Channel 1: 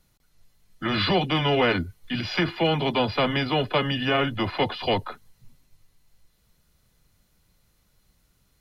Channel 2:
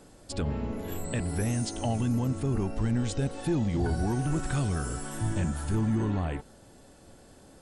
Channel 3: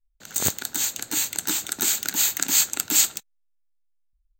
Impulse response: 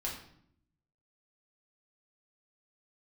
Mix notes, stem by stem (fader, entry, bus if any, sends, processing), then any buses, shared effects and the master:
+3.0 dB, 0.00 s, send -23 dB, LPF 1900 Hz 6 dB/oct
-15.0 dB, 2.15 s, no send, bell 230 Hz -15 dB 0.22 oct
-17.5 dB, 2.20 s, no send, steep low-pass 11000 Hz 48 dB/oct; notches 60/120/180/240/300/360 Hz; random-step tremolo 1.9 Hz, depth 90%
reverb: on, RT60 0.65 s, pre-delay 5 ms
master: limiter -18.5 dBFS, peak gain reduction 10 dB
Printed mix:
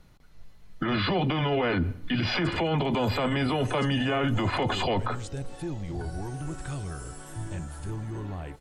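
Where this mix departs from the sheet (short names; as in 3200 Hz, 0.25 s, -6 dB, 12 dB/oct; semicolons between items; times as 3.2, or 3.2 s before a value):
stem 1 +3.0 dB -> +10.0 dB; stem 2 -15.0 dB -> -5.5 dB; stem 3 -17.5 dB -> -23.5 dB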